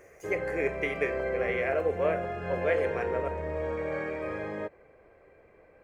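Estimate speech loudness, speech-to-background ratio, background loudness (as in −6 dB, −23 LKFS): −32.0 LKFS, 2.0 dB, −34.0 LKFS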